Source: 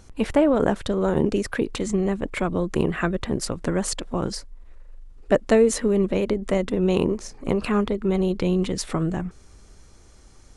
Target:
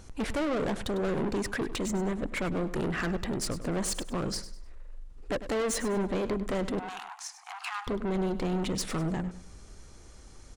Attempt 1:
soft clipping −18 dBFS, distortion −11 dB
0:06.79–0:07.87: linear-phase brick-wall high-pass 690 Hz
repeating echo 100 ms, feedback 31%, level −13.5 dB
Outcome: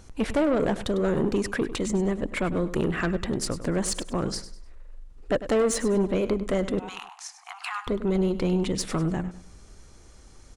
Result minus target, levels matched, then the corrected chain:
soft clipping: distortion −6 dB
soft clipping −27 dBFS, distortion −5 dB
0:06.79–0:07.87: linear-phase brick-wall high-pass 690 Hz
repeating echo 100 ms, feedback 31%, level −13.5 dB

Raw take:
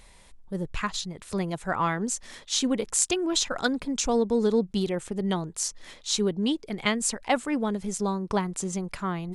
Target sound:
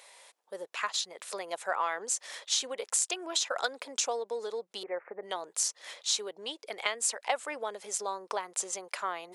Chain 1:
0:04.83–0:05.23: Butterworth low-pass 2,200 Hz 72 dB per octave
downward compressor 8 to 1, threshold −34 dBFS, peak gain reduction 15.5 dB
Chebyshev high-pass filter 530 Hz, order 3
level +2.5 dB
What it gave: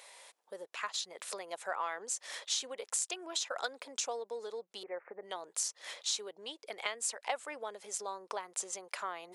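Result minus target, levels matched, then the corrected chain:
downward compressor: peak gain reduction +5.5 dB
0:04.83–0:05.23: Butterworth low-pass 2,200 Hz 72 dB per octave
downward compressor 8 to 1, threshold −27.5 dBFS, peak gain reduction 10 dB
Chebyshev high-pass filter 530 Hz, order 3
level +2.5 dB

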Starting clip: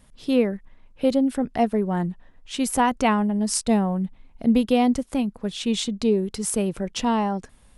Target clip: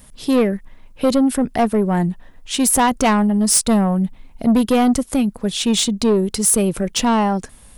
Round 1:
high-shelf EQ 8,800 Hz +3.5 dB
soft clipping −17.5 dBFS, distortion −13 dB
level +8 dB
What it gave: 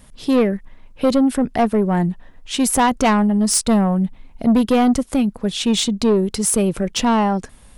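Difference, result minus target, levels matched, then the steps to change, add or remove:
8,000 Hz band −3.0 dB
change: high-shelf EQ 8,800 Hz +14 dB

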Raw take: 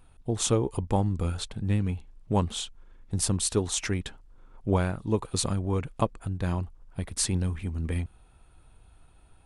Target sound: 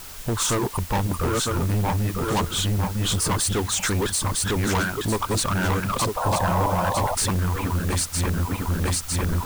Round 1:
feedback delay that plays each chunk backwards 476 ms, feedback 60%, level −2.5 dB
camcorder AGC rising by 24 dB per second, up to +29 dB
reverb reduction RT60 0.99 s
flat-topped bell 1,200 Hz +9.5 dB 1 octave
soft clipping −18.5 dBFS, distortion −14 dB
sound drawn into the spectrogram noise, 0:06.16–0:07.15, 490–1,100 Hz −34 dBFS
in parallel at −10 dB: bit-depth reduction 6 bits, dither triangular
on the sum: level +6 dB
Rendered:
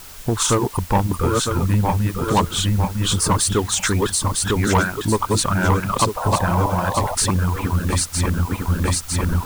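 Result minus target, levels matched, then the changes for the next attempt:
soft clipping: distortion −8 dB
change: soft clipping −28 dBFS, distortion −7 dB

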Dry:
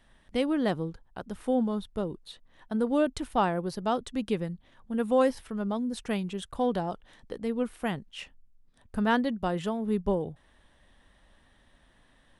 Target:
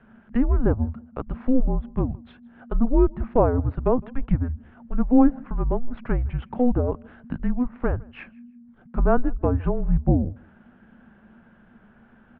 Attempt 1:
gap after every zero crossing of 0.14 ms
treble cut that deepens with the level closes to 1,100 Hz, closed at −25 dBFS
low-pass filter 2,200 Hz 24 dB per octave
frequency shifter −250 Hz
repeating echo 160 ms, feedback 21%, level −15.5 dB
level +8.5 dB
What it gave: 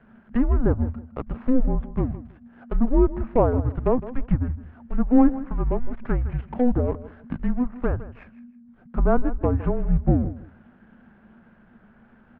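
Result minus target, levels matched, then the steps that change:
echo-to-direct +10.5 dB; gap after every zero crossing: distortion +10 dB
change: gap after every zero crossing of 0.044 ms
change: repeating echo 160 ms, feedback 21%, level −26 dB

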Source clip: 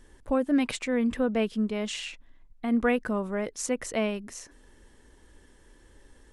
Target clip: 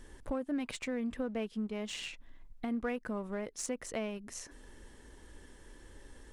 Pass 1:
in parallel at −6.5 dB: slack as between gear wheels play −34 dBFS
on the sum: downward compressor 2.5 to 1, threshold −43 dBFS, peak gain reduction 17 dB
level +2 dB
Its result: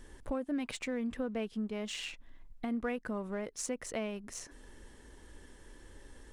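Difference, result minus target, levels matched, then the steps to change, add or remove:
slack as between gear wheels: distortion −6 dB
change: slack as between gear wheels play −27.5 dBFS

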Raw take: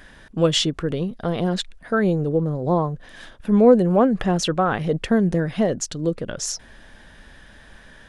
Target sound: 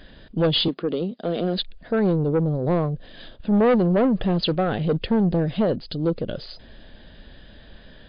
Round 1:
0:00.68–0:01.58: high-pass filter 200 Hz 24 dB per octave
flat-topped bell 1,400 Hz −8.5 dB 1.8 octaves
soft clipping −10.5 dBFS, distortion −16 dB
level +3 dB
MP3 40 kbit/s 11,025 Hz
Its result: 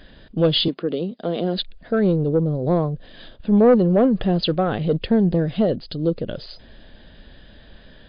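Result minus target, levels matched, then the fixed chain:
soft clipping: distortion −6 dB
0:00.68–0:01.58: high-pass filter 200 Hz 24 dB per octave
flat-topped bell 1,400 Hz −8.5 dB 1.8 octaves
soft clipping −17 dBFS, distortion −10 dB
level +3 dB
MP3 40 kbit/s 11,025 Hz

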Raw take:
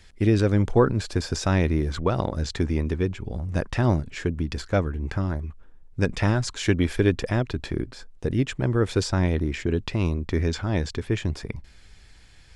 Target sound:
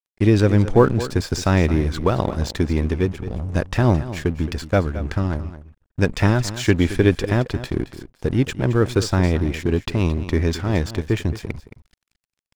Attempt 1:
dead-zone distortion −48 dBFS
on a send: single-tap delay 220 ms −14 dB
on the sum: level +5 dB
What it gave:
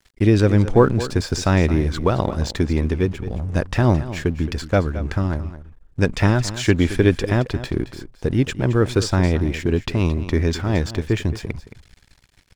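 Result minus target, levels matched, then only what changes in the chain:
dead-zone distortion: distortion −6 dB
change: dead-zone distortion −41.5 dBFS

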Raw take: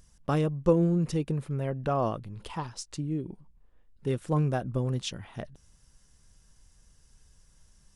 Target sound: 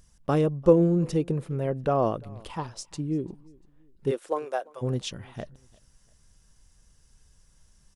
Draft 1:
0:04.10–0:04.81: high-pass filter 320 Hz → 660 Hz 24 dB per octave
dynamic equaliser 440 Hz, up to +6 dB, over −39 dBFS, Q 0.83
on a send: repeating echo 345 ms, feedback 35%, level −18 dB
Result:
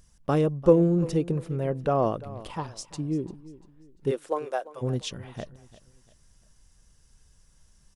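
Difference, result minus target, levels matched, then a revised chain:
echo-to-direct +7.5 dB
0:04.10–0:04.81: high-pass filter 320 Hz → 660 Hz 24 dB per octave
dynamic equaliser 440 Hz, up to +6 dB, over −39 dBFS, Q 0.83
on a send: repeating echo 345 ms, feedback 35%, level −25.5 dB

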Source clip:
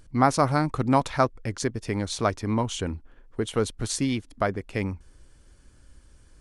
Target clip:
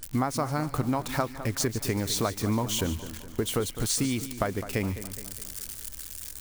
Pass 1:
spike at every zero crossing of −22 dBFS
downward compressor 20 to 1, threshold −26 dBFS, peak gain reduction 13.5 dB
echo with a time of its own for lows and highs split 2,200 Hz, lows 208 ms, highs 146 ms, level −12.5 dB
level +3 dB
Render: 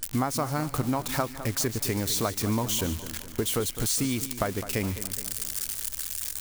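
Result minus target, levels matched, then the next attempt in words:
spike at every zero crossing: distortion +7 dB
spike at every zero crossing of −29.5 dBFS
downward compressor 20 to 1, threshold −26 dBFS, peak gain reduction 13.5 dB
echo with a time of its own for lows and highs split 2,200 Hz, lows 208 ms, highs 146 ms, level −12.5 dB
level +3 dB

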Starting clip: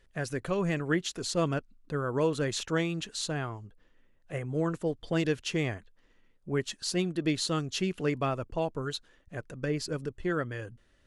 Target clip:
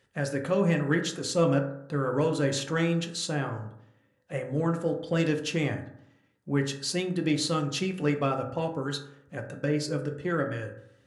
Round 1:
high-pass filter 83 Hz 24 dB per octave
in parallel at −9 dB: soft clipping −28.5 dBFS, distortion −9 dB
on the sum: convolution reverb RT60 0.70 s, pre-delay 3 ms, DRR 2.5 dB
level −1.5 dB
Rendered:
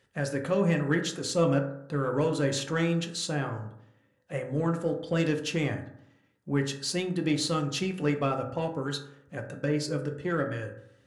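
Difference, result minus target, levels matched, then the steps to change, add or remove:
soft clipping: distortion +9 dB
change: soft clipping −20 dBFS, distortion −18 dB

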